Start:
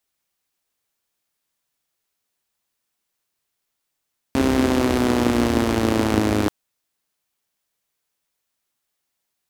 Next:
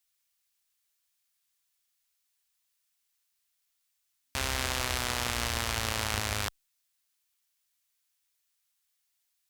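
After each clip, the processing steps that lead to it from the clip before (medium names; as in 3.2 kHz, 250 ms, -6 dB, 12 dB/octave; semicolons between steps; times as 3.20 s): amplifier tone stack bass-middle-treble 10-0-10; trim +1 dB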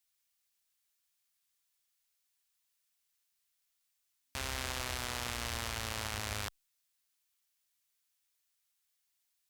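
peak limiter -15 dBFS, peak gain reduction 7 dB; trim -2.5 dB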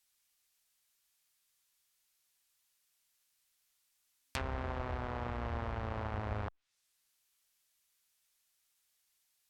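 low-pass that closes with the level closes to 990 Hz, closed at -37.5 dBFS; trim +4.5 dB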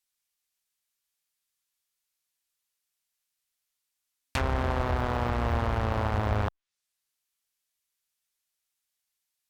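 waveshaping leveller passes 3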